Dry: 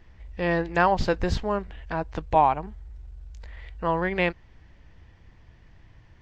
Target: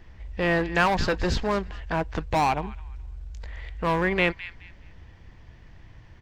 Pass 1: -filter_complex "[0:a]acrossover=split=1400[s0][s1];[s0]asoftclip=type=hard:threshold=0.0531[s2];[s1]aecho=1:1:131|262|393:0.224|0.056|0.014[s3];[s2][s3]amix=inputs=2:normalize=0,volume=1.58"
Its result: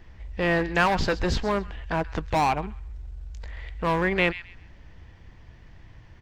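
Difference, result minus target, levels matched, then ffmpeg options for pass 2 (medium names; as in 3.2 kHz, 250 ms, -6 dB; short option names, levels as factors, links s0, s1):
echo 80 ms early
-filter_complex "[0:a]acrossover=split=1400[s0][s1];[s0]asoftclip=type=hard:threshold=0.0531[s2];[s1]aecho=1:1:211|422|633:0.224|0.056|0.014[s3];[s2][s3]amix=inputs=2:normalize=0,volume=1.58"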